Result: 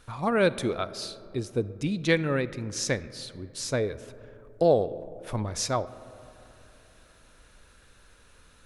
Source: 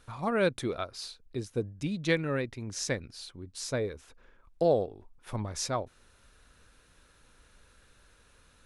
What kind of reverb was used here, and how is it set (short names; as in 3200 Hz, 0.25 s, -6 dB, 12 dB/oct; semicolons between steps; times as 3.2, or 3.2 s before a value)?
digital reverb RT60 3.1 s, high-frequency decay 0.3×, pre-delay 5 ms, DRR 16 dB; gain +4 dB